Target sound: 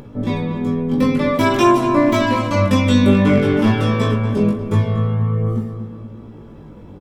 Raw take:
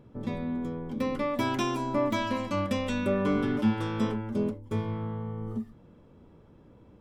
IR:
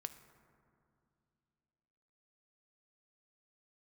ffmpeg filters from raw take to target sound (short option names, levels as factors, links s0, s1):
-filter_complex "[0:a]aeval=exprs='0.133*(abs(mod(val(0)/0.133+3,4)-2)-1)':c=same,aecho=1:1:20|63:0.668|0.188,flanger=delay=16.5:depth=3.3:speed=0.5,asplit=2[s0][s1];[s1]adelay=238,lowpass=f=2900:p=1,volume=0.316,asplit=2[s2][s3];[s3]adelay=238,lowpass=f=2900:p=1,volume=0.48,asplit=2[s4][s5];[s5]adelay=238,lowpass=f=2900:p=1,volume=0.48,asplit=2[s6][s7];[s7]adelay=238,lowpass=f=2900:p=1,volume=0.48,asplit=2[s8][s9];[s9]adelay=238,lowpass=f=2900:p=1,volume=0.48[s10];[s0][s2][s4][s6][s8][s10]amix=inputs=6:normalize=0,asplit=2[s11][s12];[1:a]atrim=start_sample=2205[s13];[s12][s13]afir=irnorm=-1:irlink=0,volume=1.68[s14];[s11][s14]amix=inputs=2:normalize=0,acompressor=mode=upward:threshold=0.00891:ratio=2.5,volume=2.51"